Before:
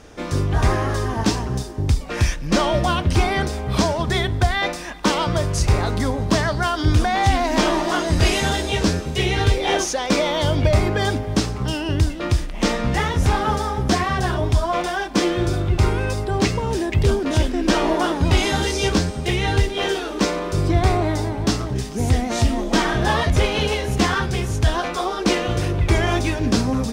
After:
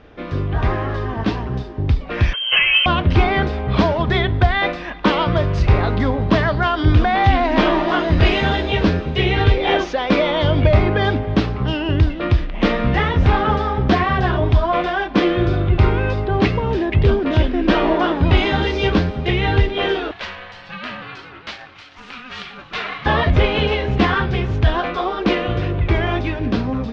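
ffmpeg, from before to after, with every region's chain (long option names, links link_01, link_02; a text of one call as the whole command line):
ffmpeg -i in.wav -filter_complex "[0:a]asettb=1/sr,asplit=3[link_01][link_02][link_03];[link_01]atrim=end=2.334[link_04];[link_02]atrim=start=2.33:end=2.86,asetpts=PTS-STARTPTS,afade=type=in:duration=0.004:curve=qsin,afade=type=out:start_time=0.526:duration=0.004:curve=qsin,aecho=1:1:1.9:0.48,atrim=end_sample=23373,lowpass=frequency=2700:width_type=q:width=0.5098,lowpass=frequency=2700:width_type=q:width=0.6013,lowpass=frequency=2700:width_type=q:width=0.9,lowpass=frequency=2700:width_type=q:width=2.563,afreqshift=-3200[link_05];[link_03]atrim=start=2.856[link_06];[link_04][link_05]acrossfade=duration=0.004:curve1=hsin:curve2=qsin[link_07];[link_07][link_06]acrossfade=duration=0.004:curve1=qsin:curve2=hsin,asettb=1/sr,asplit=3[link_08][link_09][link_10];[link_08]atrim=end=20.114[link_11];[link_09]atrim=start=20.11:end=23.06,asetpts=PTS-STARTPTS,afade=type=in:duration=0.004:curve=qsin,afade=type=out:start_time=2.946:duration=0.004:curve=qsin,highpass=1300,aphaser=in_gain=1:out_gain=1:delay=4:decay=0.28:speed=1.6:type=sinusoidal,aeval=exprs='val(0)*sin(2*PI*500*n/s)':channel_layout=same[link_12];[link_10]atrim=start=23.056[link_13];[link_11][link_12]acrossfade=duration=0.004:curve1=hsin:curve2=qsin[link_14];[link_14][link_13]acrossfade=duration=0.004:curve1=qsin:curve2=hsin,lowpass=frequency=3500:width=0.5412,lowpass=frequency=3500:width=1.3066,bandreject=frequency=880:width=23,dynaudnorm=framelen=430:gausssize=9:maxgain=11.5dB,volume=-1dB" out.wav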